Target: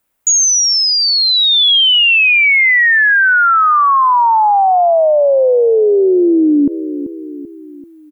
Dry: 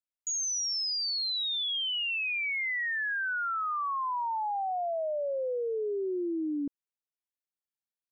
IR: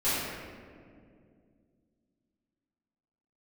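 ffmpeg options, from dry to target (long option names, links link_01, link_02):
-filter_complex "[0:a]equalizer=frequency=4900:width_type=o:width=1.7:gain=-11,asplit=2[link_01][link_02];[link_02]adelay=387,lowpass=frequency=1000:poles=1,volume=-19dB,asplit=2[link_03][link_04];[link_04]adelay=387,lowpass=frequency=1000:poles=1,volume=0.52,asplit=2[link_05][link_06];[link_06]adelay=387,lowpass=frequency=1000:poles=1,volume=0.52,asplit=2[link_07][link_08];[link_08]adelay=387,lowpass=frequency=1000:poles=1,volume=0.52[link_09];[link_01][link_03][link_05][link_07][link_09]amix=inputs=5:normalize=0,alimiter=level_in=35dB:limit=-1dB:release=50:level=0:latency=1,volume=-5.5dB"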